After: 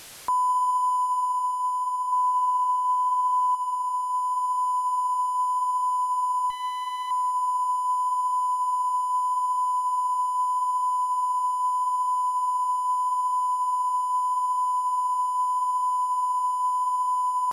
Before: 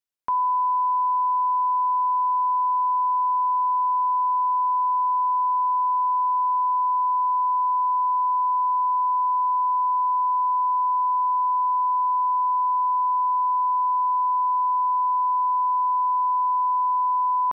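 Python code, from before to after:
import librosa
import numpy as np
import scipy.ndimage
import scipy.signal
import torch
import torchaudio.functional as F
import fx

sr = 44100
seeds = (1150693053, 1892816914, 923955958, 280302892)

y = fx.delta_mod(x, sr, bps=64000, step_db=-36.5)
y = fx.dynamic_eq(y, sr, hz=910.0, q=1.1, threshold_db=-35.0, ratio=4.0, max_db=6, at=(2.12, 3.55))
y = fx.rider(y, sr, range_db=10, speed_s=2.0)
y = fx.tube_stage(y, sr, drive_db=25.0, bias=0.35, at=(6.5, 7.11))
y = fx.echo_tape(y, sr, ms=201, feedback_pct=89, wet_db=-10.0, lp_hz=1000.0, drive_db=19.0, wow_cents=29)
y = y * 10.0 ** (-4.0 / 20.0)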